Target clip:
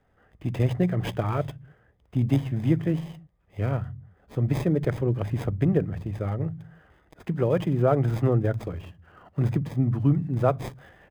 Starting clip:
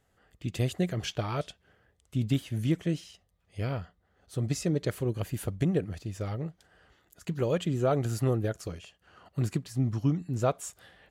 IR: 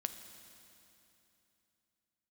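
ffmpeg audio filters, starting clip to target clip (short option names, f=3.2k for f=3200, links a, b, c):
-filter_complex "[0:a]acrossover=split=180|710|2600[a][b][c][d];[a]aecho=1:1:50|105|165.5|232|305.3:0.631|0.398|0.251|0.158|0.1[e];[d]acrusher=samples=31:mix=1:aa=0.000001[f];[e][b][c][f]amix=inputs=4:normalize=0,volume=4.5dB"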